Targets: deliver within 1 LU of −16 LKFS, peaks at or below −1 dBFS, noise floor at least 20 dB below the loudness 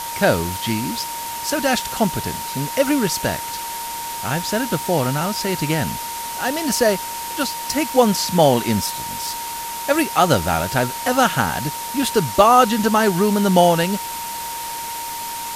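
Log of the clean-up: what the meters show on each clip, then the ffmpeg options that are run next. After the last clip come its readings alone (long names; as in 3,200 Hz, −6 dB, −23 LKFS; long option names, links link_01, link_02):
interfering tone 930 Hz; level of the tone −28 dBFS; background noise floor −29 dBFS; target noise floor −40 dBFS; integrated loudness −19.5 LKFS; sample peak −1.0 dBFS; target loudness −16.0 LKFS
→ -af "bandreject=frequency=930:width=30"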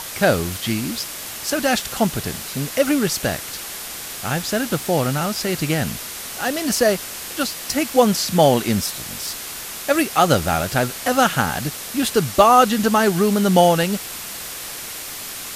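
interfering tone none found; background noise floor −32 dBFS; target noise floor −40 dBFS
→ -af "afftdn=noise_reduction=8:noise_floor=-32"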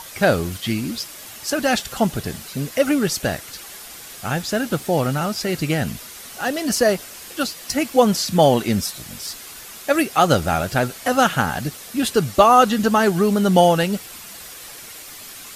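background noise floor −38 dBFS; target noise floor −40 dBFS
→ -af "afftdn=noise_reduction=6:noise_floor=-38"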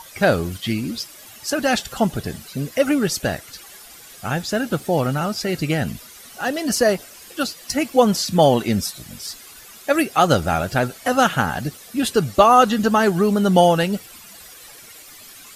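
background noise floor −43 dBFS; integrated loudness −20.0 LKFS; sample peak −1.5 dBFS; target loudness −16.0 LKFS
→ -af "volume=4dB,alimiter=limit=-1dB:level=0:latency=1"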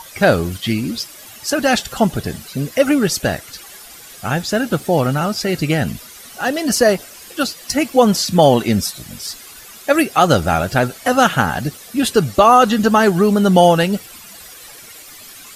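integrated loudness −16.0 LKFS; sample peak −1.0 dBFS; background noise floor −39 dBFS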